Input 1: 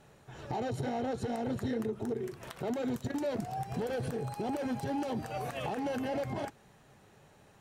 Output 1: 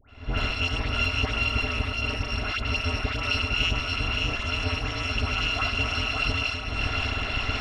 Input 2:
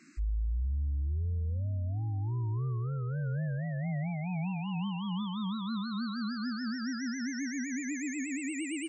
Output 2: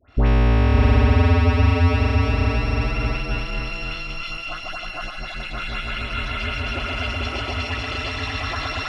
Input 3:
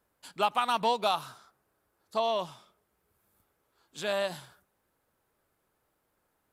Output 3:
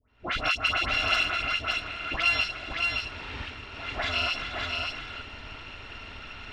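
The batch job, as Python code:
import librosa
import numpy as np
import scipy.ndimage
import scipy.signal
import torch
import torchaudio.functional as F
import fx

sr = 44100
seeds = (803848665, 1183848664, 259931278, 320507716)

p1 = fx.bit_reversed(x, sr, seeds[0], block=256)
p2 = fx.recorder_agc(p1, sr, target_db=-20.0, rise_db_per_s=76.0, max_gain_db=30)
p3 = scipy.signal.sosfilt(scipy.signal.butter(4, 3200.0, 'lowpass', fs=sr, output='sos'), p2)
p4 = np.clip(10.0 ** (33.0 / 20.0) * p3, -1.0, 1.0) / 10.0 ** (33.0 / 20.0)
p5 = p3 + F.gain(torch.from_numpy(p4), -12.0).numpy()
p6 = fx.dispersion(p5, sr, late='highs', ms=92.0, hz=1400.0)
p7 = p6 + fx.echo_single(p6, sr, ms=568, db=-4.0, dry=0)
y = F.gain(torch.from_numpy(p7), 9.0).numpy()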